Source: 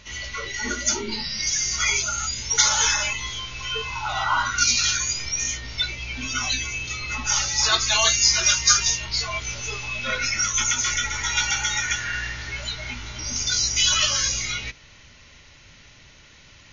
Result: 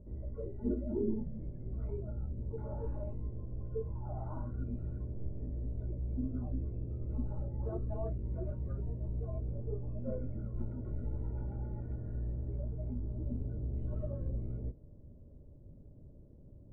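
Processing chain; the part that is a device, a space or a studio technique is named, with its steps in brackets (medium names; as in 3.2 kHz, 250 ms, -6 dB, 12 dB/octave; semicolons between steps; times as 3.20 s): under water (low-pass 430 Hz 24 dB/octave; peaking EQ 600 Hz +6.5 dB 0.32 oct)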